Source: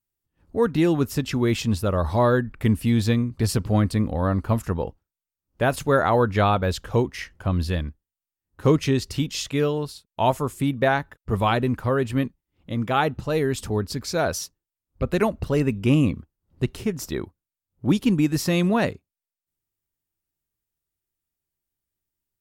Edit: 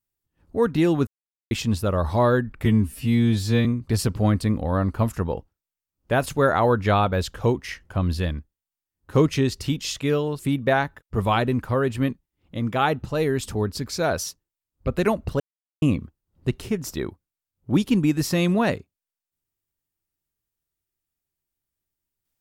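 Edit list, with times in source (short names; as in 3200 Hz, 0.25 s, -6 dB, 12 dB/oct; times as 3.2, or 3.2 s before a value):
1.07–1.51 mute
2.65–3.15 stretch 2×
9.89–10.54 cut
15.55–15.97 mute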